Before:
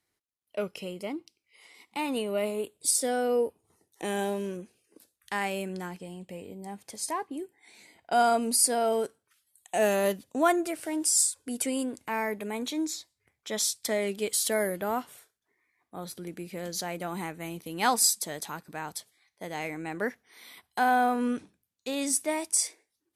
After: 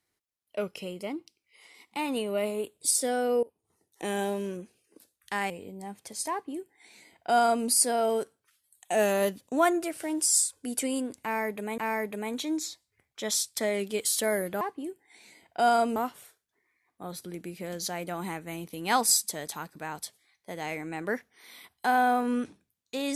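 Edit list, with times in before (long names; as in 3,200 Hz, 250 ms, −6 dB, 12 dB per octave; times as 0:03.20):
0:03.43–0:04.06: fade in, from −22 dB
0:05.50–0:06.33: remove
0:07.14–0:08.49: duplicate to 0:14.89
0:12.06–0:12.61: repeat, 2 plays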